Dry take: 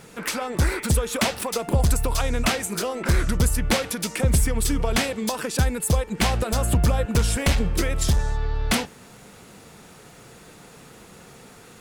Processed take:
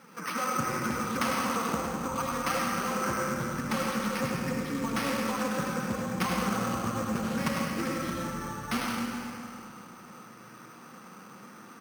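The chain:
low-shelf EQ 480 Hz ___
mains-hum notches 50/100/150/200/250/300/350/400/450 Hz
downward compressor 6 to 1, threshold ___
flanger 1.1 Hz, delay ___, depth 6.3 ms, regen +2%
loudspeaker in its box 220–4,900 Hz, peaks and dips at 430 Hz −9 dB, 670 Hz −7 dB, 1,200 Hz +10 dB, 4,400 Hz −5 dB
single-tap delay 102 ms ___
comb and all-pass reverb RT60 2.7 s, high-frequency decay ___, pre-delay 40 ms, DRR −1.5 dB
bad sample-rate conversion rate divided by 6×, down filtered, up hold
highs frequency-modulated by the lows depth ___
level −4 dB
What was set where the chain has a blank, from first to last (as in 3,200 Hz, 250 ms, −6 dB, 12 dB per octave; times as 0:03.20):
+6.5 dB, −16 dBFS, 3.5 ms, −7 dB, 0.7×, 0.13 ms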